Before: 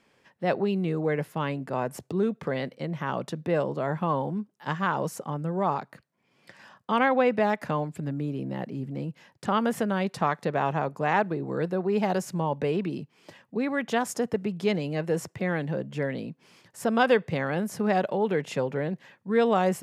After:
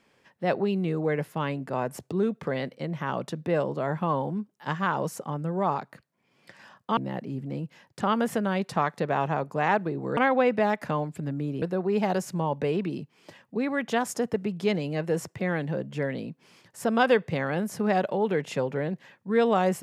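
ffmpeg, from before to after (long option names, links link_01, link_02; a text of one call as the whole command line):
ffmpeg -i in.wav -filter_complex "[0:a]asplit=4[link_01][link_02][link_03][link_04];[link_01]atrim=end=6.972[link_05];[link_02]atrim=start=8.418:end=11.622[link_06];[link_03]atrim=start=6.968:end=8.422[link_07];[link_04]atrim=start=11.618[link_08];[link_05][link_06]acrossfade=duration=0.004:curve1=hsin:curve2=hsin[link_09];[link_09][link_07]acrossfade=duration=0.004:curve1=hsin:curve2=hsin[link_10];[link_10][link_08]acrossfade=duration=0.004:curve1=hsin:curve2=hsin" out.wav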